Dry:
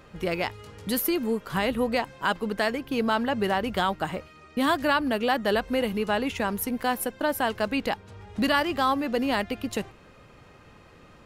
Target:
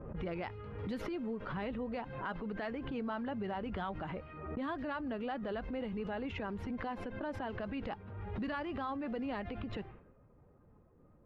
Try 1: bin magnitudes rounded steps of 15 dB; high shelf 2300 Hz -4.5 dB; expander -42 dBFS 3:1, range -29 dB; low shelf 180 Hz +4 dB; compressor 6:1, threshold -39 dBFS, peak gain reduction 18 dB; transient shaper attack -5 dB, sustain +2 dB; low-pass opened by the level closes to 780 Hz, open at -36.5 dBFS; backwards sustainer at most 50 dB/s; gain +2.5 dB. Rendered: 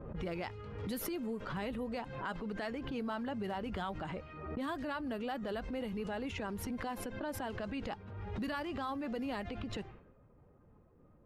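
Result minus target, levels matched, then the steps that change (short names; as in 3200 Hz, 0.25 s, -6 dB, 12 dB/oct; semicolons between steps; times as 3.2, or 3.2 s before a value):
4000 Hz band +4.0 dB
add after bin magnitudes rounded: LPF 2900 Hz 12 dB/oct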